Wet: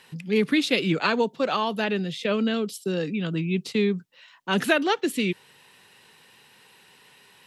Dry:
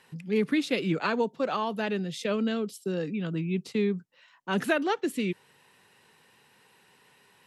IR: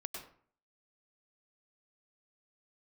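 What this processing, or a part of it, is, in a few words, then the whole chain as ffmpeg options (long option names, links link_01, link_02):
presence and air boost: -filter_complex "[0:a]asettb=1/sr,asplit=3[link_01][link_02][link_03];[link_01]atrim=end=1.844[link_04];[link_02]atrim=start=1.84:end=2.54,asetpts=PTS-STARTPTS,afade=type=in:duration=0.004:curve=qsin,afade=type=out:start_time=0.696:duration=0.004:curve=qsin,acrossover=split=3300[link_05][link_06];[link_06]acompressor=threshold=-50dB:ratio=4:attack=1:release=60[link_07];[link_05][link_07]amix=inputs=2:normalize=0[link_08];[link_03]atrim=start=2.536[link_09];[link_04][link_08]acrossfade=duration=0.004:curve1=hsin:curve2=qsin[link_10];[link_10][link_09]acrossfade=duration=0.004:curve1=qsin:curve2=hsin,equalizer=frequency=3500:width_type=o:width=1.4:gain=5.5,highshelf=frequency=9400:gain=5,volume=3.5dB"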